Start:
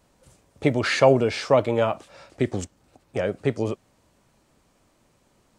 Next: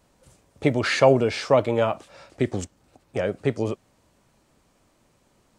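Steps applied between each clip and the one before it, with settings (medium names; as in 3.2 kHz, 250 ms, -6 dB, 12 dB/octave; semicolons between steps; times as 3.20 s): no audible change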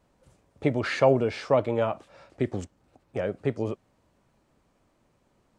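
treble shelf 3.4 kHz -9 dB; trim -3.5 dB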